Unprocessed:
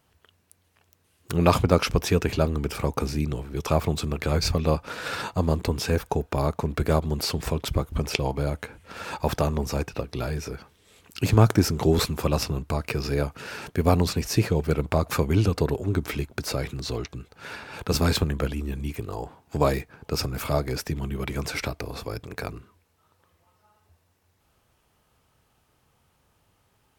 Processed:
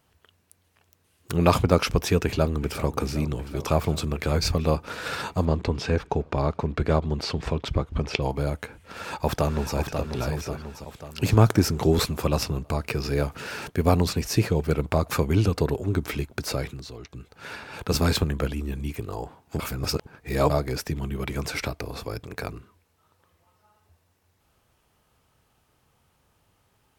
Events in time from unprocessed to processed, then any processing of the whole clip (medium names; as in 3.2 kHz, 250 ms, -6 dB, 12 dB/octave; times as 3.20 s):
2.23–2.96 s: echo throw 380 ms, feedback 80%, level -15 dB
5.45–8.22 s: low-pass 4.6 kHz
8.79–9.76 s: echo throw 540 ms, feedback 55%, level -6.5 dB
13.15–13.68 s: companding laws mixed up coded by mu
16.59–17.31 s: dip -11 dB, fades 0.32 s
19.59–20.50 s: reverse